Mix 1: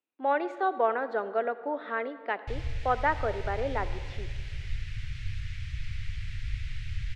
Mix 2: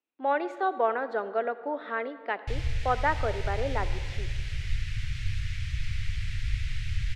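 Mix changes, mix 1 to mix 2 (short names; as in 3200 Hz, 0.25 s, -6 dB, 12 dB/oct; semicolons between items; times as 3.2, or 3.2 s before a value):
background +4.0 dB; master: add high shelf 6700 Hz +7 dB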